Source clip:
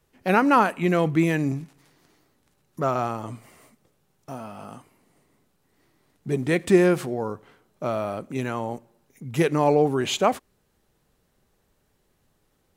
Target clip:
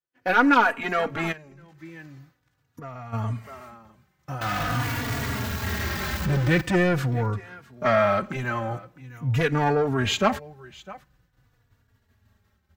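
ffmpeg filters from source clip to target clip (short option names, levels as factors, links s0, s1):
-filter_complex "[0:a]asettb=1/sr,asplit=3[s0][s1][s2];[s0]atrim=end=4.414[s3];[s1]atrim=start=4.41:end=6.61,asetpts=PTS-STARTPTS,afade=t=in:d=0.004:c=qsin,afade=t=out:st=2.196:d=0.004:c=qsin,aeval=exprs='val(0)+0.5*0.0531*sgn(val(0))':c=same[s4];[s2]atrim=start=6.606[s5];[s3][s4]acrossfade=d=0.004:c1=hsin:c2=qsin[s6];[s6][s5]acrossfade=d=0.004:c1=qsin:c2=hsin,asubboost=boost=9.5:cutoff=120,asplit=3[s7][s8][s9];[s7]afade=t=out:st=7.84:d=0.02[s10];[s8]asplit=2[s11][s12];[s12]highpass=f=720:p=1,volume=7.94,asoftclip=type=tanh:threshold=0.266[s13];[s11][s13]amix=inputs=2:normalize=0,lowpass=f=3600:p=1,volume=0.501,afade=t=in:st=7.84:d=0.02,afade=t=out:st=8.34:d=0.02[s14];[s9]afade=t=in:st=8.34:d=0.02[s15];[s10][s14][s15]amix=inputs=3:normalize=0,aecho=1:1:654:0.0841,agate=range=0.0224:threshold=0.00355:ratio=3:detection=peak,highpass=91,acontrast=79,asoftclip=type=tanh:threshold=0.376,asplit=3[s16][s17][s18];[s16]afade=t=out:st=1.31:d=0.02[s19];[s17]acompressor=threshold=0.0282:ratio=10,afade=t=in:st=1.31:d=0.02,afade=t=out:st=3.12:d=0.02[s20];[s18]afade=t=in:st=3.12:d=0.02[s21];[s19][s20][s21]amix=inputs=3:normalize=0,equalizer=f=160:t=o:w=0.67:g=-7,equalizer=f=1600:t=o:w=0.67:g=7,equalizer=f=10000:t=o:w=0.67:g=-12,asplit=2[s22][s23];[s23]adelay=3.5,afreqshift=-0.45[s24];[s22][s24]amix=inputs=2:normalize=1,volume=0.841"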